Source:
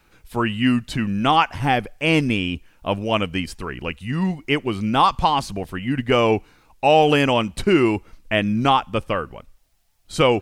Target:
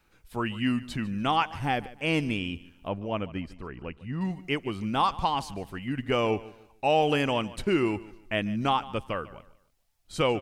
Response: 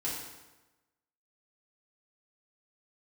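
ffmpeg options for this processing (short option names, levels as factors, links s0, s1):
-filter_complex "[0:a]asettb=1/sr,asplit=3[s0][s1][s2];[s0]atrim=end=2.884[s3];[s1]atrim=start=2.88:end=4.21,asetpts=PTS-STARTPTS,afade=t=in:d=0.004:c=qsin,afade=t=out:st=1.326:d=0.004:c=qsin,lowpass=f=1200:p=1[s4];[s2]atrim=start=4.206[s5];[s3][s4]acrossfade=d=0.004:c1=hsin:c2=qsin[s6];[s6][s5]acrossfade=d=0.004:c1=qsin:c2=hsin,aecho=1:1:148|296|444:0.119|0.0368|0.0114,volume=0.376"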